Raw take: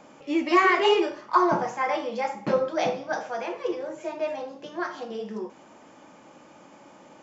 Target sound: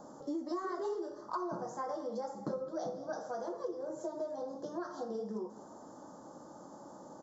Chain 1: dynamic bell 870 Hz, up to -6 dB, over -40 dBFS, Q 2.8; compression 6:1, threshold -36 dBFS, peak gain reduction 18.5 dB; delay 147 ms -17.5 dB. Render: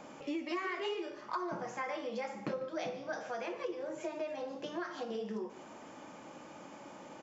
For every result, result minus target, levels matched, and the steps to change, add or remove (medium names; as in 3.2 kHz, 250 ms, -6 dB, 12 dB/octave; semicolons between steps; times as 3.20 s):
2 kHz band +10.5 dB; echo 58 ms early
add after dynamic bell: Butterworth band-stop 2.5 kHz, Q 0.65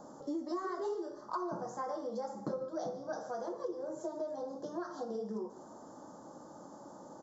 echo 58 ms early
change: delay 205 ms -17.5 dB